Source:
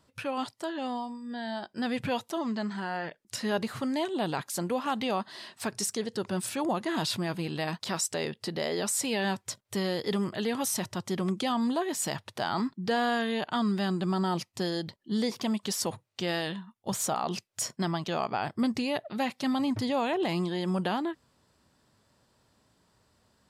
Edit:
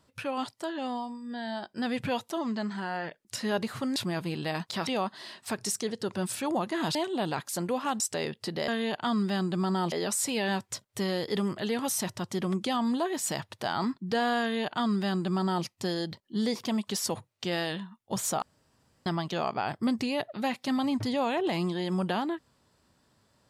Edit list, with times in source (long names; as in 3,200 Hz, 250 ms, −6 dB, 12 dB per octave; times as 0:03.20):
0:03.96–0:05.01: swap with 0:07.09–0:08.00
0:13.17–0:14.41: duplicate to 0:08.68
0:17.18–0:17.82: fill with room tone